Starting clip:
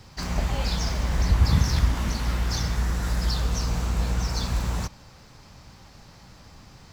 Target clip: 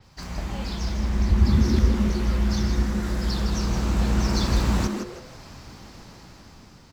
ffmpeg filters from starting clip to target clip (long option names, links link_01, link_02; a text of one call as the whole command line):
ffmpeg -i in.wav -filter_complex "[0:a]asettb=1/sr,asplit=3[link_01][link_02][link_03];[link_01]atrim=end=0.804[link_04];[link_02]atrim=start=0.8:end=2.83,asetpts=PTS-STARTPTS,afade=type=in:duration=0.004:curve=qsin,afade=type=out:start_time=2.026:duration=0.004:curve=qsin,equalizer=frequency=64:width=1:gain=6[link_05];[link_03]atrim=start=2.826[link_06];[link_04][link_05]acrossfade=duration=0.004:curve1=hsin:curve2=qsin[link_07];[link_07][link_06]acrossfade=duration=0.004:curve1=qsin:curve2=hsin,dynaudnorm=framelen=460:gausssize=7:maxgain=12.5dB,asplit=5[link_08][link_09][link_10][link_11][link_12];[link_09]adelay=160,afreqshift=150,volume=-7dB[link_13];[link_10]adelay=320,afreqshift=300,volume=-17.2dB[link_14];[link_11]adelay=480,afreqshift=450,volume=-27.3dB[link_15];[link_12]adelay=640,afreqshift=600,volume=-37.5dB[link_16];[link_08][link_13][link_14][link_15][link_16]amix=inputs=5:normalize=0,adynamicequalizer=threshold=0.00708:dfrequency=5700:dqfactor=0.7:tfrequency=5700:tqfactor=0.7:attack=5:release=100:ratio=0.375:range=2:mode=cutabove:tftype=highshelf,volume=-5.5dB" out.wav